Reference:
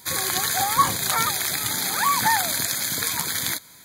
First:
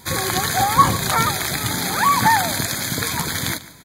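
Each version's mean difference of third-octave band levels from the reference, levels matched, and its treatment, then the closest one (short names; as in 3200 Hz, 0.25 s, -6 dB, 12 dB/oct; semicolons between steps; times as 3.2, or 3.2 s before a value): 4.0 dB: tilt -2 dB/oct; on a send: echo 0.144 s -17.5 dB; on the sum: gain +5.5 dB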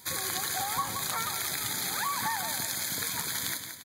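2.5 dB: compressor 4:1, threshold -25 dBFS, peak gain reduction 10.5 dB; feedback echo 0.173 s, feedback 41%, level -8 dB; gain -4.5 dB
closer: second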